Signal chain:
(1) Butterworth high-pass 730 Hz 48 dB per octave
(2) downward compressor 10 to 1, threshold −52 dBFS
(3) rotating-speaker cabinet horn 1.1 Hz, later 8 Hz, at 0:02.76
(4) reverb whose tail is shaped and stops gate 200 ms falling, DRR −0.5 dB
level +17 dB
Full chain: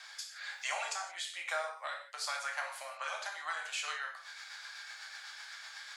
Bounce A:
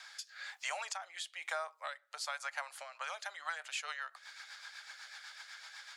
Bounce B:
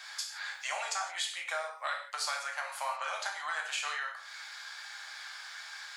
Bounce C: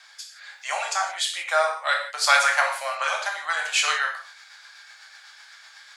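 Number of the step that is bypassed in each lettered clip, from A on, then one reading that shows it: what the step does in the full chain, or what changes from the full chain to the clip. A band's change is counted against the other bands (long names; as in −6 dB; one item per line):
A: 4, change in integrated loudness −3.0 LU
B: 3, 500 Hz band −2.0 dB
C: 2, average gain reduction 8.0 dB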